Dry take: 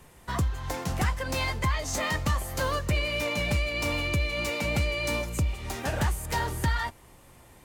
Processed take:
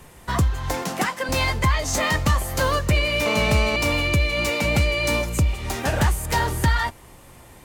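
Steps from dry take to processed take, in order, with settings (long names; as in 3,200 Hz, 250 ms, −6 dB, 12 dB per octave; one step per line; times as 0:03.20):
0:00.82–0:01.29: high-pass filter 190 Hz 24 dB per octave
0:03.26–0:03.76: phone interference −33 dBFS
level +7 dB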